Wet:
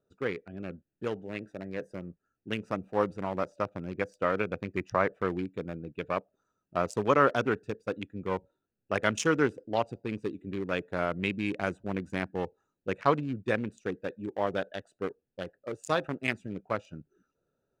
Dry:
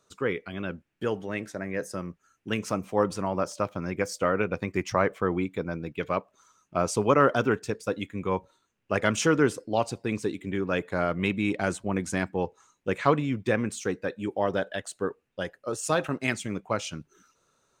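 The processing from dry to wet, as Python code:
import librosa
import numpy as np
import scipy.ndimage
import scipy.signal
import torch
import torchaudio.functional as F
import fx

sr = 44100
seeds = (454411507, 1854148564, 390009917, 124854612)

y = fx.wiener(x, sr, points=41)
y = fx.low_shelf(y, sr, hz=490.0, db=-5.5)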